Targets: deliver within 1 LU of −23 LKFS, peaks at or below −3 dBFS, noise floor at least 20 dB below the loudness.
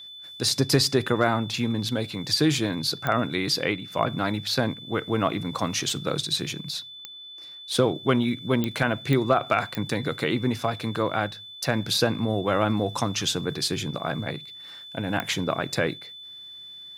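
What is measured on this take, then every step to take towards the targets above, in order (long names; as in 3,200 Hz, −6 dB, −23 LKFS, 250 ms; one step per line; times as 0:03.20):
number of clicks 6; interfering tone 3,500 Hz; level of the tone −40 dBFS; integrated loudness −25.5 LKFS; sample peak −8.0 dBFS; target loudness −23.0 LKFS
→ click removal
notch filter 3,500 Hz, Q 30
level +2.5 dB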